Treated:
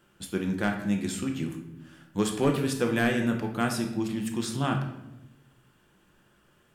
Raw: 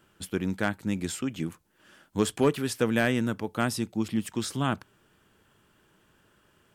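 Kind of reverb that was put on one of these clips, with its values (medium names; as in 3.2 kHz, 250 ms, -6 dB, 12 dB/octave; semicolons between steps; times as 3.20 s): simulated room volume 310 m³, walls mixed, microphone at 0.87 m; trim -2 dB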